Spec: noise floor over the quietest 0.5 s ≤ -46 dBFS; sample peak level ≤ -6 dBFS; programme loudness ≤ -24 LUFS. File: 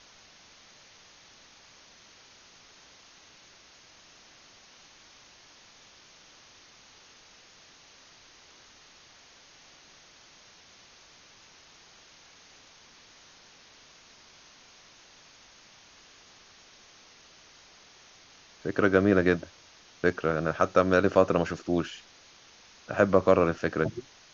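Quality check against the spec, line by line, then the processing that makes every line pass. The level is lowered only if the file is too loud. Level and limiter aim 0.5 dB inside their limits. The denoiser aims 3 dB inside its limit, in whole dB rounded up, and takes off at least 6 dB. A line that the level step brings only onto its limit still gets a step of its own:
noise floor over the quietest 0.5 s -56 dBFS: pass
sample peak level -7.0 dBFS: pass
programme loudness -25.5 LUFS: pass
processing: none needed

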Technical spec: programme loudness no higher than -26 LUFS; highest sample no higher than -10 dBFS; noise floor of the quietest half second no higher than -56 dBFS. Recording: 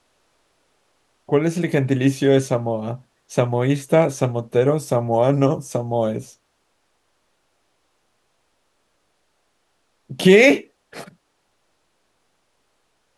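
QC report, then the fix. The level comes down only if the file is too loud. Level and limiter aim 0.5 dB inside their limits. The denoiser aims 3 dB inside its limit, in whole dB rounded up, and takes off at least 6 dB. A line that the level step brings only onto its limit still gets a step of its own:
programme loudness -19.0 LUFS: fail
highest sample -2.5 dBFS: fail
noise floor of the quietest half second -68 dBFS: pass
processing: trim -7.5 dB; peak limiter -10.5 dBFS

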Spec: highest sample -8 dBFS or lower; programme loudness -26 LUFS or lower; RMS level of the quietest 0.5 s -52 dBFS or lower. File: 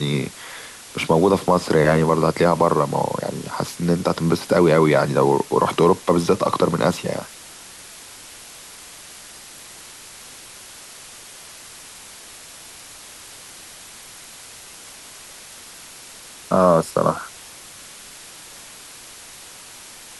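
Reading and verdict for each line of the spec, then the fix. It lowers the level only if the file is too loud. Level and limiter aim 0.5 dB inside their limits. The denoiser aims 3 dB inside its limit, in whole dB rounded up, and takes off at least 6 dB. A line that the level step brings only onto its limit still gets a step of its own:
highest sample -5.0 dBFS: fail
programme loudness -19.0 LUFS: fail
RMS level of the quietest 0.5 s -41 dBFS: fail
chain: noise reduction 7 dB, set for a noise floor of -41 dBFS; trim -7.5 dB

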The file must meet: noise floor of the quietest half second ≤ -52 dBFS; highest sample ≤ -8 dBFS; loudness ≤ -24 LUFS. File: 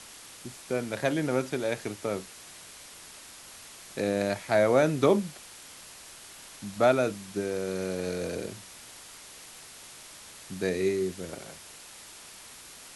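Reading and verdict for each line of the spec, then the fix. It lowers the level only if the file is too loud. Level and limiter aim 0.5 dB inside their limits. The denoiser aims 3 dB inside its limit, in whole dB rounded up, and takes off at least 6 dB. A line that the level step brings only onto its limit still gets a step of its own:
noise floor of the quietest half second -48 dBFS: fail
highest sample -10.0 dBFS: pass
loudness -28.5 LUFS: pass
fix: noise reduction 7 dB, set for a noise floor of -48 dBFS

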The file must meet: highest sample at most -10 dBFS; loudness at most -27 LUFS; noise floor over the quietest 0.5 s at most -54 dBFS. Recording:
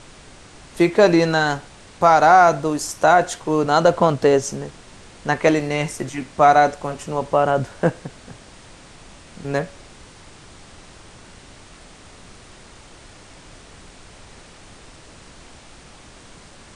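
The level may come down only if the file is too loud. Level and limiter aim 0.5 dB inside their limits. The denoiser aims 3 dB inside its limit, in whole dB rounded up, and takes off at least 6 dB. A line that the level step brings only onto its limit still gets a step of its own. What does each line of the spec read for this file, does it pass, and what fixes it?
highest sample -2.0 dBFS: fail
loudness -18.0 LUFS: fail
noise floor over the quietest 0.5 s -44 dBFS: fail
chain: noise reduction 6 dB, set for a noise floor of -44 dBFS; trim -9.5 dB

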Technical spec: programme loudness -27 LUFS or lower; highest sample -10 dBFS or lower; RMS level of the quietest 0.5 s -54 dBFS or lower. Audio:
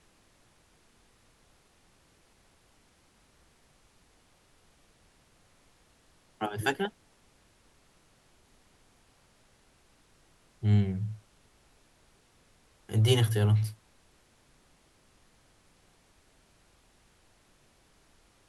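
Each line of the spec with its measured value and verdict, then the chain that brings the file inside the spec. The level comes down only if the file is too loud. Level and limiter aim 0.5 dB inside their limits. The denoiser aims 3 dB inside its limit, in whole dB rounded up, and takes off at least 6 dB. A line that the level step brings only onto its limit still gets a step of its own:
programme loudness -28.5 LUFS: pass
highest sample -11.0 dBFS: pass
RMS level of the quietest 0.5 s -64 dBFS: pass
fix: none needed

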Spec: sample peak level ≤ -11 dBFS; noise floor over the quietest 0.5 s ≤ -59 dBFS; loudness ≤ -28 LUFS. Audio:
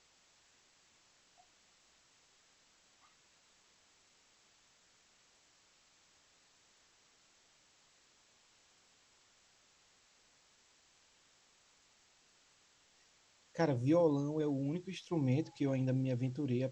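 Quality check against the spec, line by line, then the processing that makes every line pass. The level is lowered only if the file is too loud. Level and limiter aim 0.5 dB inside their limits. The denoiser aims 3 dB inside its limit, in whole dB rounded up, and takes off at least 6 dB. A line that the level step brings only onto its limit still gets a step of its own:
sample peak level -19.0 dBFS: pass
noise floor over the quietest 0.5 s -69 dBFS: pass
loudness -35.0 LUFS: pass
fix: none needed

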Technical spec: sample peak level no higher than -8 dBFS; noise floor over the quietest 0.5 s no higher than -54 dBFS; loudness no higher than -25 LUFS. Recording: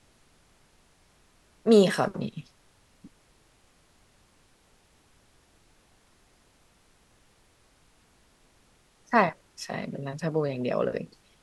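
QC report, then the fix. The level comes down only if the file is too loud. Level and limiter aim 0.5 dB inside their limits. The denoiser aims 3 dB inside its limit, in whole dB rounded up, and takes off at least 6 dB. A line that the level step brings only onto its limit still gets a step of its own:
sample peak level -7.0 dBFS: fail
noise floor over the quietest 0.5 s -63 dBFS: pass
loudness -26.5 LUFS: pass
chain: peak limiter -8.5 dBFS

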